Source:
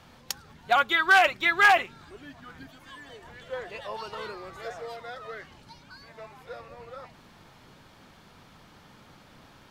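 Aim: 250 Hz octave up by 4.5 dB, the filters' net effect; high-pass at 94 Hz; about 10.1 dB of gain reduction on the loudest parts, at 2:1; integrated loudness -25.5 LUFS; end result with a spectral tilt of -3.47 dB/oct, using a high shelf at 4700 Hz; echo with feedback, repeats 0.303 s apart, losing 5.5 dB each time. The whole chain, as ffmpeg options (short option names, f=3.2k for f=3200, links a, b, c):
-af "highpass=94,equalizer=f=250:t=o:g=7,highshelf=f=4.7k:g=-4,acompressor=threshold=-33dB:ratio=2,aecho=1:1:303|606|909|1212|1515|1818|2121:0.531|0.281|0.149|0.079|0.0419|0.0222|0.0118,volume=8.5dB"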